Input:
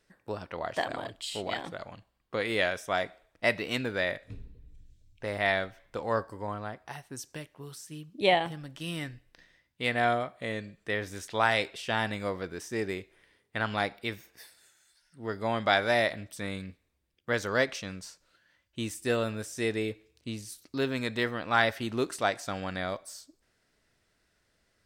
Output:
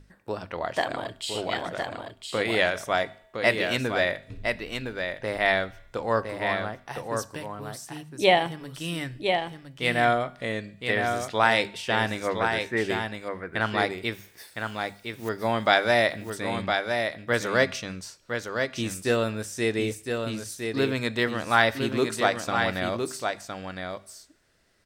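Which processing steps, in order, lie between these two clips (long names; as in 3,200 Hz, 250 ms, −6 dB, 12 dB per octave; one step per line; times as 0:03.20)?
mains hum 50 Hz, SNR 20 dB
0:12.27–0:12.81: high shelf with overshoot 2,700 Hz −12 dB, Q 3
0:14.14–0:15.29: noise that follows the level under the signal 15 dB
mains-hum notches 50/100/150/200/250 Hz
tuned comb filter 130 Hz, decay 0.79 s, harmonics odd, mix 40%
on a send: single-tap delay 1,011 ms −5.5 dB
on the sum: level +8.5 dB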